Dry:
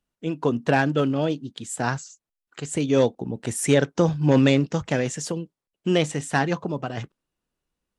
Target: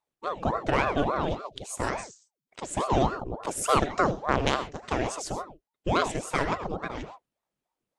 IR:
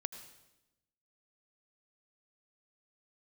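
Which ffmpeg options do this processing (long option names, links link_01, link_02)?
-filter_complex "[0:a]asettb=1/sr,asplit=3[link_01][link_02][link_03];[link_01]atrim=end=4.114[link_04];[link_02]atrim=start=4.11:end=4.88,asetpts=PTS-STARTPTS,afade=type=in:duration=0.004:curve=qsin,afade=type=out:start_time=0.766:duration=0.004:curve=qsin,aeval=exprs='0.531*(cos(1*acos(clip(val(0)/0.531,-1,1)))-cos(1*PI/2))+0.133*(cos(3*acos(clip(val(0)/0.531,-1,1)))-cos(3*PI/2))':channel_layout=same[link_05];[link_03]atrim=start=4.876[link_06];[link_04][link_05]acrossfade=duration=0.004:curve1=hsin:curve2=qsin[link_07];[link_07][link_06]acrossfade=duration=0.004:curve1=qsin:curve2=hsin[link_08];[1:a]atrim=start_sample=2205,atrim=end_sample=6174[link_09];[link_08][link_09]afir=irnorm=-1:irlink=0,aeval=exprs='val(0)*sin(2*PI*530*n/s+530*0.75/3.5*sin(2*PI*3.5*n/s))':channel_layout=same"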